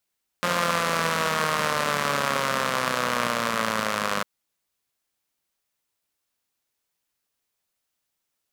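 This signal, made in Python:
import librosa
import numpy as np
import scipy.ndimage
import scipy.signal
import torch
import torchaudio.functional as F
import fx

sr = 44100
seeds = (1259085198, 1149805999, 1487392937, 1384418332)

y = fx.engine_four_rev(sr, seeds[0], length_s=3.8, rpm=5300, resonances_hz=(220.0, 550.0, 1100.0), end_rpm=3000)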